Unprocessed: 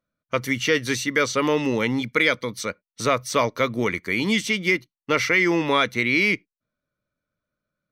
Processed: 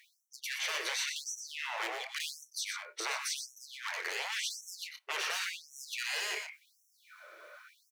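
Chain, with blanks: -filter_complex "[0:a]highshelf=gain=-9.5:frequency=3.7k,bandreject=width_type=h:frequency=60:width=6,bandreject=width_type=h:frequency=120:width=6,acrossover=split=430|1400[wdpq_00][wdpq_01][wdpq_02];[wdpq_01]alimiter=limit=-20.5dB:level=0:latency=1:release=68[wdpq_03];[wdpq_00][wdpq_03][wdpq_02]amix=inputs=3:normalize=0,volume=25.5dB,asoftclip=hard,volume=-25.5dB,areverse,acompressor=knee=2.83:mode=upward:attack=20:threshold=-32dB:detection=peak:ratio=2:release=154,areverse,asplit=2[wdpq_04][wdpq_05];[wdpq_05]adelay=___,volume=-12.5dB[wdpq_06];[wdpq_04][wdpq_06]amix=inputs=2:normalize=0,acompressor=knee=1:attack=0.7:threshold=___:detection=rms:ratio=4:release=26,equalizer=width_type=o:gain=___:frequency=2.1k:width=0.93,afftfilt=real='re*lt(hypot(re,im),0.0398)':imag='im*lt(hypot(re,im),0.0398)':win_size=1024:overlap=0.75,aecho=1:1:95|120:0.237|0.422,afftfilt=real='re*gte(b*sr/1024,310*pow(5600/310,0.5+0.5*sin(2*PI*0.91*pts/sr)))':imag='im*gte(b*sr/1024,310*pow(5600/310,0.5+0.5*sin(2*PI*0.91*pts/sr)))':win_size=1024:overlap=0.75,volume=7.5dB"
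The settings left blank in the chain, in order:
27, -39dB, 5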